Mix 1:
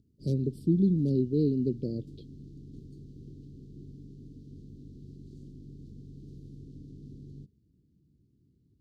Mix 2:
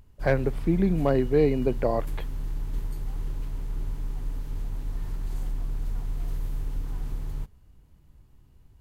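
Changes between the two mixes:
background: remove band-pass 160–2500 Hz; master: remove inverse Chebyshev band-stop 800–2000 Hz, stop band 60 dB

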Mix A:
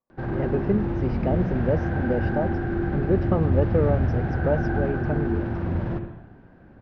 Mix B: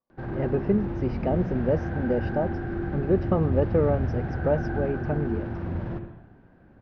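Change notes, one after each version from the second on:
background -4.5 dB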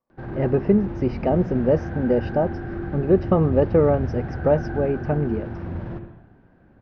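speech +5.5 dB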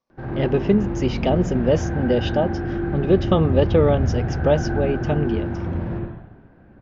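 speech: remove boxcar filter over 13 samples; background: send +9.5 dB

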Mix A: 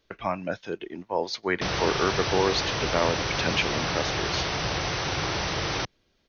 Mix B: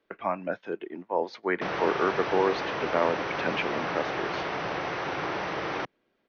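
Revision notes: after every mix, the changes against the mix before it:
master: add three-band isolator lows -20 dB, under 180 Hz, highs -19 dB, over 2.5 kHz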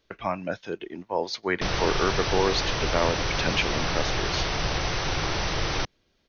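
background: remove high-pass 70 Hz; master: remove three-band isolator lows -20 dB, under 180 Hz, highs -19 dB, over 2.5 kHz

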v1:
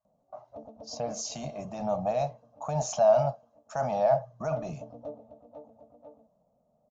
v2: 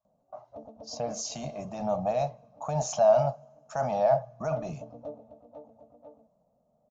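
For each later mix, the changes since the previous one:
reverb: on, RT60 2.0 s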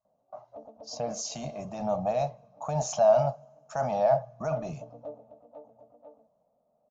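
background: add tone controls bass -10 dB, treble -10 dB

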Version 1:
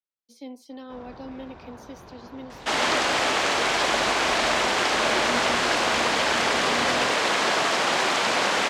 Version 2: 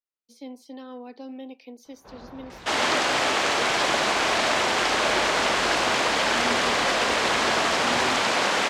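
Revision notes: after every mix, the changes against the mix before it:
first sound: entry +1.15 s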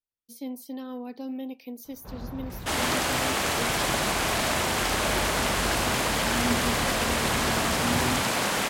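second sound -4.5 dB; master: remove three-band isolator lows -13 dB, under 270 Hz, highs -24 dB, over 7.1 kHz

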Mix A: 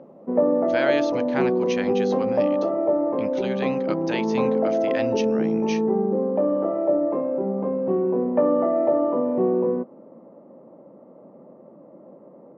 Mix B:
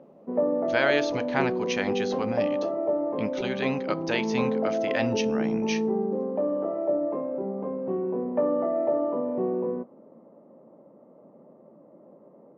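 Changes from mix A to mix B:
background -8.0 dB; reverb: on, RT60 0.40 s

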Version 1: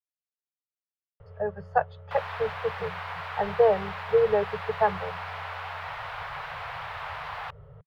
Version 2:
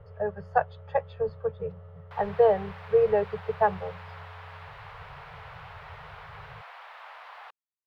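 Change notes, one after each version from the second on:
speech: entry -1.20 s; background -9.5 dB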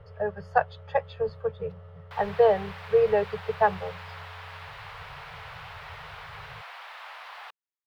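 master: add treble shelf 2.4 kHz +11 dB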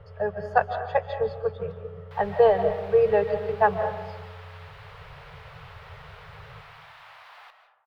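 background -7.5 dB; reverb: on, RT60 1.1 s

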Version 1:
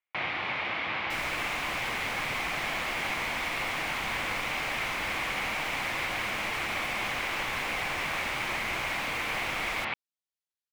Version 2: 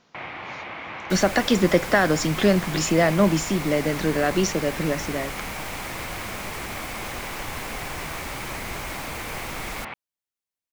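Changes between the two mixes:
speech: unmuted; second sound +9.5 dB; master: add peaking EQ 3.8 kHz -7.5 dB 2.2 oct

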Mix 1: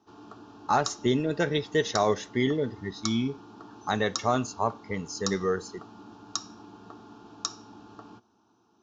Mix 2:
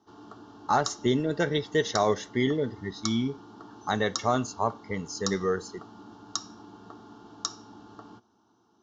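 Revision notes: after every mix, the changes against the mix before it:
master: add Butterworth band-stop 2.5 kHz, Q 6.9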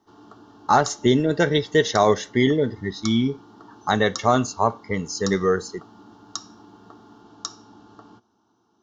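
speech +7.0 dB

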